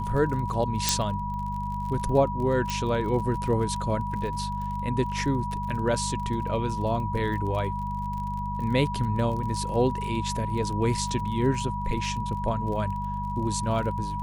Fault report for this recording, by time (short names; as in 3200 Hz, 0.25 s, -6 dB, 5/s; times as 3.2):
crackle 33/s -34 dBFS
hum 50 Hz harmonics 4 -33 dBFS
tone 970 Hz -31 dBFS
0.89 pop -5 dBFS
2.7 pop -15 dBFS